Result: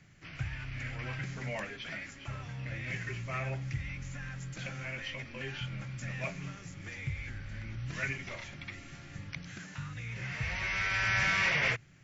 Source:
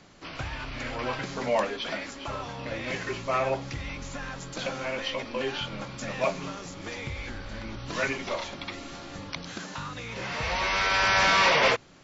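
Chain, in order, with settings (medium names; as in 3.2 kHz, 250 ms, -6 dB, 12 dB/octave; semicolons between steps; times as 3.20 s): graphic EQ 125/250/500/1000/2000/4000 Hz +11/-6/-8/-11/+7/-9 dB; trim -5.5 dB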